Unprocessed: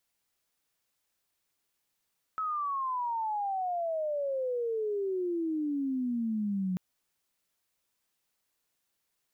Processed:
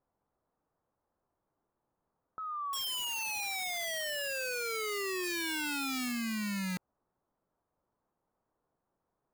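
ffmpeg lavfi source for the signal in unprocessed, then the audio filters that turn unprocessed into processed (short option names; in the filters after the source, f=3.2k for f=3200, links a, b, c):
-f lavfi -i "aevalsrc='pow(10,(-29.5+1.5*t/4.39)/20)*sin(2*PI*1300*4.39/log(180/1300)*(exp(log(180/1300)*t/4.39)-1))':d=4.39:s=44100"
-filter_complex "[0:a]asplit=2[a][b];[b]aeval=exprs='0.0422*sin(PI/2*3.16*val(0)/0.0422)':c=same,volume=-9.5dB[c];[a][c]amix=inputs=2:normalize=0,lowpass=f=1.1k:w=0.5412,lowpass=f=1.1k:w=1.3066,aeval=exprs='(mod(44.7*val(0)+1,2)-1)/44.7':c=same"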